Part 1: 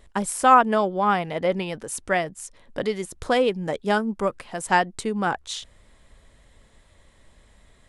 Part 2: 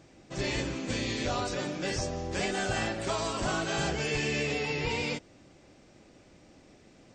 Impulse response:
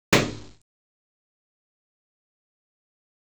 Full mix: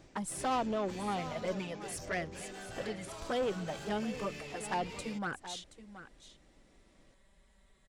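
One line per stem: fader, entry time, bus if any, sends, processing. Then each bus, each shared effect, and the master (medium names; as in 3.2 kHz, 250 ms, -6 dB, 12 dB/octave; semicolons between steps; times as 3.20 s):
-12.5 dB, 0.00 s, no send, echo send -14 dB, touch-sensitive flanger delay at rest 5.5 ms, full sweep at -16.5 dBFS; Chebyshev shaper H 5 -17 dB, 6 -22 dB, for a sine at -8.5 dBFS
-2.0 dB, 0.00 s, no send, no echo send, saturation -31 dBFS, distortion -11 dB; auto duck -9 dB, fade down 0.45 s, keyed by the first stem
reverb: none
echo: delay 726 ms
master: saturation -24.5 dBFS, distortion -22 dB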